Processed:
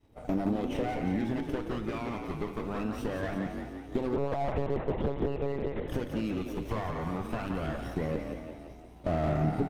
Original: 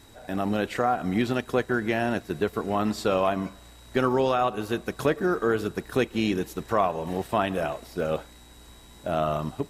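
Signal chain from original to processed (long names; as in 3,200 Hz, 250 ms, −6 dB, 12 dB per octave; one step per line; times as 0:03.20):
lower of the sound and its delayed copy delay 0.35 ms
downward expander −40 dBFS
high-shelf EQ 2,600 Hz −11 dB
downward compressor 8 to 1, threshold −36 dBFS, peak gain reduction 16 dB
phase shifter 0.22 Hz, delay 1 ms, feedback 49%
echo with shifted repeats 174 ms, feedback 58%, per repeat +41 Hz, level −7 dB
feedback delay network reverb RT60 0.82 s, low-frequency decay 0.95×, high-frequency decay 0.85×, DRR 11.5 dB
0:04.16–0:05.88: one-pitch LPC vocoder at 8 kHz 140 Hz
slew-rate limiting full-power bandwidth 16 Hz
level +5 dB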